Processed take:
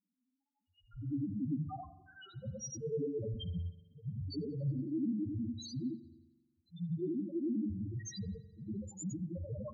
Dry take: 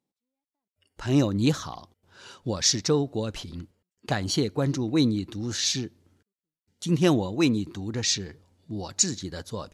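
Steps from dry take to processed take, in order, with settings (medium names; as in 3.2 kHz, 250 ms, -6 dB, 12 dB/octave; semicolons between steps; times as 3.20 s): short-time spectra conjugated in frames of 231 ms; reverse; compression 16:1, threshold -38 dBFS, peak gain reduction 19.5 dB; reverse; loudest bins only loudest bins 1; spring tank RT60 1.2 s, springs 43 ms, DRR 13.5 dB; trim +13.5 dB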